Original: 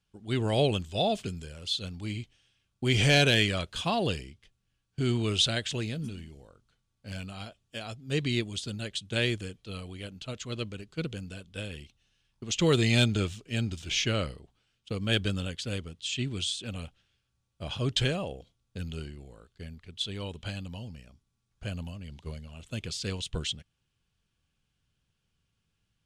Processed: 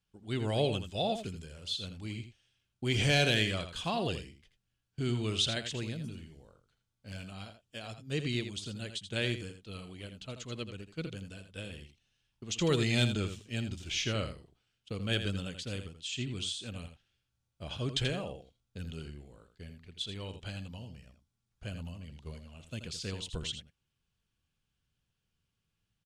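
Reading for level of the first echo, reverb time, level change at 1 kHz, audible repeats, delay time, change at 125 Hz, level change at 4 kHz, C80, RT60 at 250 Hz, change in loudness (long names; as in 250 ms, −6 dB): −9.5 dB, no reverb audible, −4.5 dB, 1, 82 ms, −4.5 dB, −4.5 dB, no reverb audible, no reverb audible, −4.5 dB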